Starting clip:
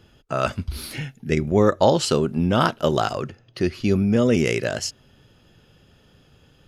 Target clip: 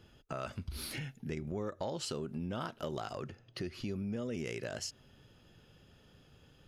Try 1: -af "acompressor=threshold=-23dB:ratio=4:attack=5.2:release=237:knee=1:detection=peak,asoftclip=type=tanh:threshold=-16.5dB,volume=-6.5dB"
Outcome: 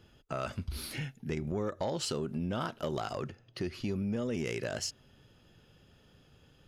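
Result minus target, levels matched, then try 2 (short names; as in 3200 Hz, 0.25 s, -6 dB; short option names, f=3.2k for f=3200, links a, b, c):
compressor: peak gain reduction -5 dB
-af "acompressor=threshold=-29.5dB:ratio=4:attack=5.2:release=237:knee=1:detection=peak,asoftclip=type=tanh:threshold=-16.5dB,volume=-6.5dB"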